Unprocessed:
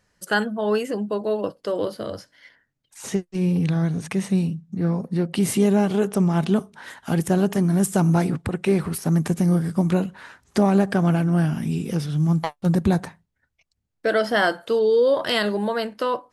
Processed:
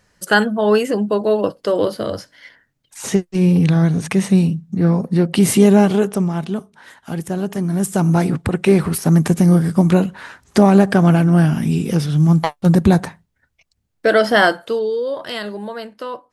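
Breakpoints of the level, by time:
0:05.85 +7.5 dB
0:06.47 −3 dB
0:07.34 −3 dB
0:08.54 +7 dB
0:14.44 +7 dB
0:15.01 −4.5 dB

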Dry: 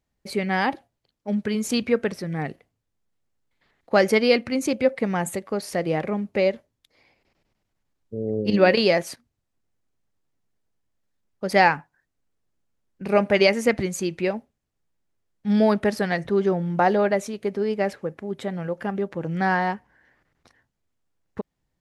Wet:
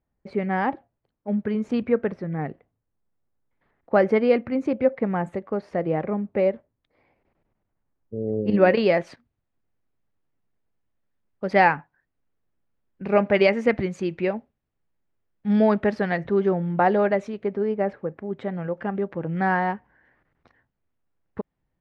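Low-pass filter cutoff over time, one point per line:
0:08.41 1,500 Hz
0:09.03 2,600 Hz
0:17.26 2,600 Hz
0:17.83 1,400 Hz
0:18.51 2,300 Hz

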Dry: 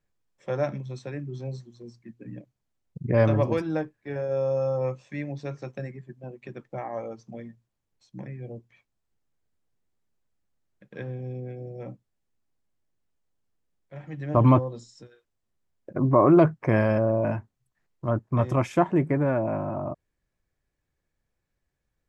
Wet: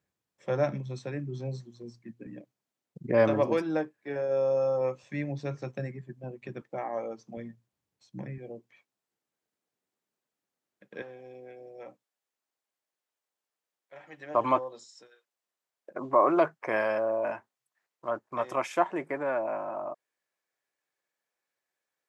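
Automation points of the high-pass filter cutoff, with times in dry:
100 Hz
from 0:02.27 240 Hz
from 0:05.03 62 Hz
from 0:06.62 220 Hz
from 0:07.37 100 Hz
from 0:08.38 270 Hz
from 0:11.02 590 Hz

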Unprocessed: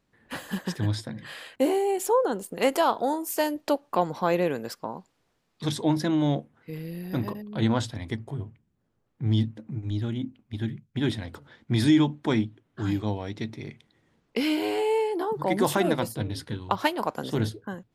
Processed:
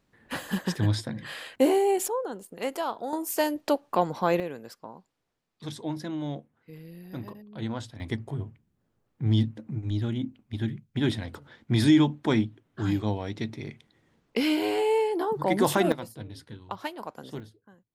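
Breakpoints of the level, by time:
+2 dB
from 0:02.08 −8 dB
from 0:03.13 0 dB
from 0:04.40 −9 dB
from 0:08.00 +0.5 dB
from 0:15.92 −10 dB
from 0:17.40 −20 dB

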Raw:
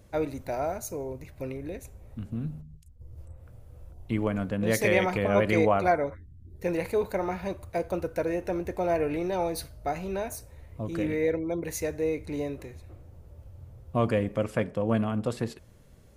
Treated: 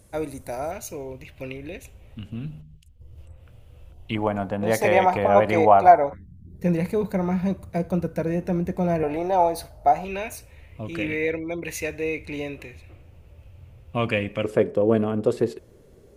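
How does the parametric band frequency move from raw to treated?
parametric band +15 dB 0.82 octaves
9,700 Hz
from 0:00.71 2,900 Hz
from 0:04.15 800 Hz
from 0:06.13 180 Hz
from 0:09.03 770 Hz
from 0:10.05 2,600 Hz
from 0:14.44 400 Hz

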